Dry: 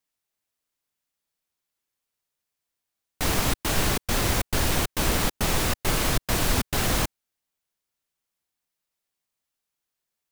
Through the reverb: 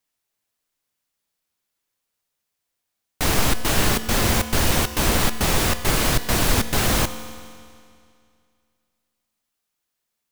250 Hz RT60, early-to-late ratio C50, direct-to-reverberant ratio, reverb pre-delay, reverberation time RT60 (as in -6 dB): 2.3 s, 12.0 dB, 11.0 dB, 4 ms, 2.3 s